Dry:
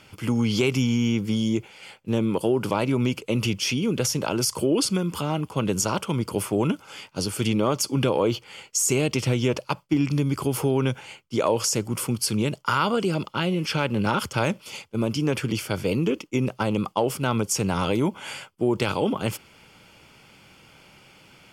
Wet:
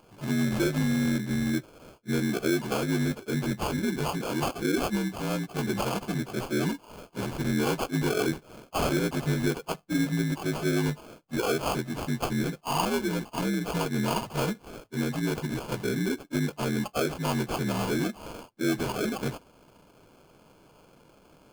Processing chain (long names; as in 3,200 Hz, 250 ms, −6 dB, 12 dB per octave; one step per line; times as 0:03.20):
partials spread apart or drawn together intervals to 77%
sample-rate reduction 1,900 Hz, jitter 0%
level −3 dB